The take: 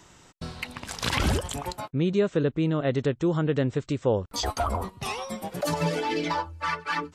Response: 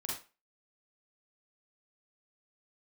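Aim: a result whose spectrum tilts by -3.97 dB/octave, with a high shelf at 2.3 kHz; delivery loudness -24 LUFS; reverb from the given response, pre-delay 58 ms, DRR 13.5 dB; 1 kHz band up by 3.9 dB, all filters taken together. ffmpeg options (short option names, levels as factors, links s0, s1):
-filter_complex "[0:a]equalizer=f=1000:t=o:g=3,highshelf=f=2300:g=9,asplit=2[s0][s1];[1:a]atrim=start_sample=2205,adelay=58[s2];[s1][s2]afir=irnorm=-1:irlink=0,volume=0.188[s3];[s0][s3]amix=inputs=2:normalize=0,volume=1.12"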